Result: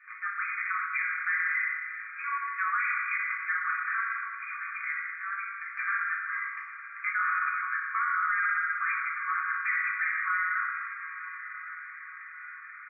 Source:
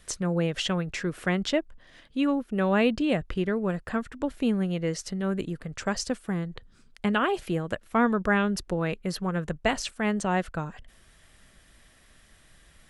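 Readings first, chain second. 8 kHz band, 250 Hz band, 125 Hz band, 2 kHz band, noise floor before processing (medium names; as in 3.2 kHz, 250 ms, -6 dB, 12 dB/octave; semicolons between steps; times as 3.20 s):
under -40 dB, under -40 dB, under -40 dB, +7.5 dB, -58 dBFS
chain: block-companded coder 5-bit; FFT band-pass 1.1–2.5 kHz; in parallel at +0.5 dB: compression 4:1, threshold -49 dBFS, peak gain reduction 21.5 dB; on the sum: doubling 18 ms -7.5 dB; on a send: echo that smears into a reverb 1050 ms, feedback 57%, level -15 dB; on the sum: FDN reverb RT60 1.7 s, low-frequency decay 1.3×, high-frequency decay 0.5×, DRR -7 dB; peak limiter -20 dBFS, peak gain reduction 11 dB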